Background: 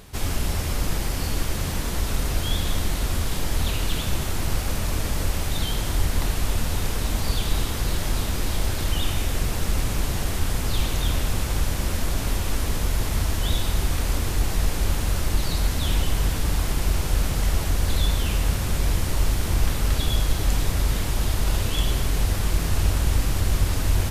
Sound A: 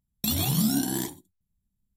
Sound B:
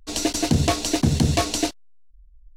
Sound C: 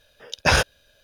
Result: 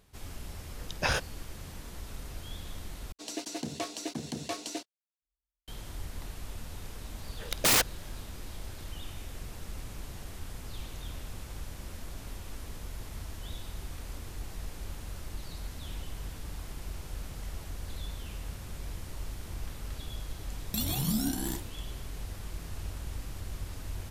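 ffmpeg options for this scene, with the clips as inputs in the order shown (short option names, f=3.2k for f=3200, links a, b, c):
-filter_complex "[3:a]asplit=2[a][b];[0:a]volume=-17.5dB[c];[2:a]highpass=220[d];[b]aeval=exprs='(mod(6.68*val(0)+1,2)-1)/6.68':c=same[e];[c]asplit=2[f][g];[f]atrim=end=3.124[h];[d]atrim=end=2.56,asetpts=PTS-STARTPTS,volume=-14dB[i];[g]atrim=start=5.676[j];[a]atrim=end=1.03,asetpts=PTS-STARTPTS,volume=-11dB,afade=t=in:d=0.004:c=hsin,afade=t=out:st=1.026:d=0.004:c=hsin,adelay=570[k];[e]atrim=end=1.03,asetpts=PTS-STARTPTS,volume=-1dB,afade=t=in:d=0.004:c=hsin,afade=t=out:st=1.026:d=0.004:c=hsin,adelay=7190[l];[1:a]atrim=end=1.96,asetpts=PTS-STARTPTS,volume=-6dB,afade=t=in:d=0.004:c=hsin,afade=t=out:st=1.956:d=0.004:c=hsin,adelay=20500[m];[h][i]acrossfade=d=0.004:c1=hsin:c2=hsin[n];[n][j]acrossfade=d=0.004:c1=hsin:c2=hsin[o];[o][k][l][m]amix=inputs=4:normalize=0"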